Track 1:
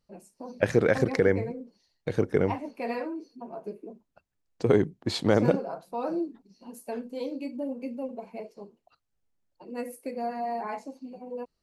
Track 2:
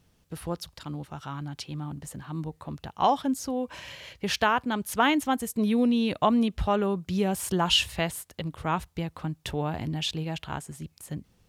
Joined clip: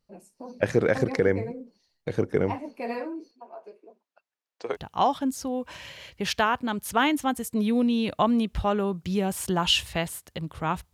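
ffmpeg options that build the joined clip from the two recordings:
-filter_complex "[0:a]asettb=1/sr,asplit=3[a][b][c];[a]atrim=end=3.314[d];[b]atrim=start=3.31:end=4.77,asetpts=PTS-STARTPTS,afade=t=in:d=0.004:c=qsin,afade=t=out:st=1.456:d=0.004:c=qsin,highpass=640,lowpass=5.8k[e];[c]atrim=start=4.766[f];[d][e]acrossfade=d=0.004:c1=hsin:c2=qsin[g];[g][f]acrossfade=d=0.004:c1=qsin:c2=hsin,apad=whole_dur=10.93,atrim=end=10.93,atrim=end=4.77,asetpts=PTS-STARTPTS[h];[1:a]atrim=start=2.74:end=8.96,asetpts=PTS-STARTPTS[i];[h][i]acrossfade=d=0.06:c1=tri:c2=tri"

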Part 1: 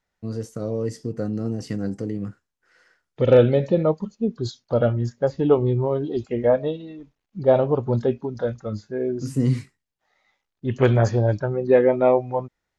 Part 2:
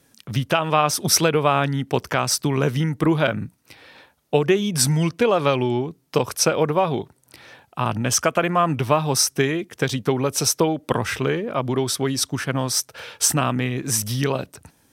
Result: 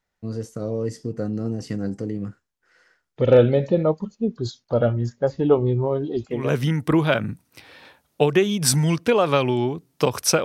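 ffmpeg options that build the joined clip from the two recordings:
-filter_complex "[0:a]apad=whole_dur=10.44,atrim=end=10.44,atrim=end=6.56,asetpts=PTS-STARTPTS[a];[1:a]atrim=start=2.43:end=6.57,asetpts=PTS-STARTPTS[b];[a][b]acrossfade=d=0.26:c1=tri:c2=tri"

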